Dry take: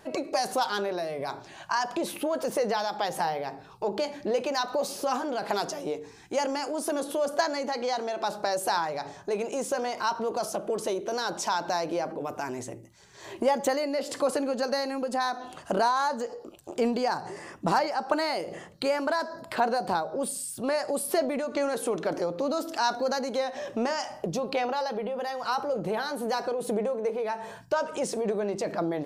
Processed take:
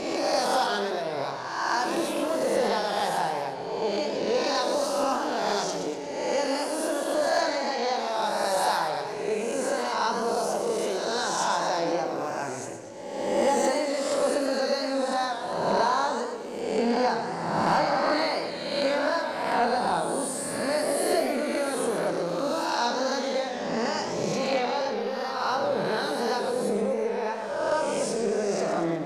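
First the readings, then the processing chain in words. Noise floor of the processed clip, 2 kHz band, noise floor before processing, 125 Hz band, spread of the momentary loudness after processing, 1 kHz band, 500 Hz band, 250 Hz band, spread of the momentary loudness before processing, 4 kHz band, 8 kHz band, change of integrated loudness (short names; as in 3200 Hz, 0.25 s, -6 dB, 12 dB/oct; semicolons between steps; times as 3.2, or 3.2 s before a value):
-34 dBFS, +3.5 dB, -49 dBFS, +3.0 dB, 6 LU, +2.5 dB, +2.5 dB, +2.5 dB, 7 LU, +4.0 dB, +3.0 dB, +2.5 dB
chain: spectral swells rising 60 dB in 1.33 s; flutter echo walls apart 5.1 m, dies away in 0.24 s; soft clip -11 dBFS, distortion -25 dB; LPF 10000 Hz 12 dB/oct; warbling echo 0.119 s, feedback 53%, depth 146 cents, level -8 dB; gain -2.5 dB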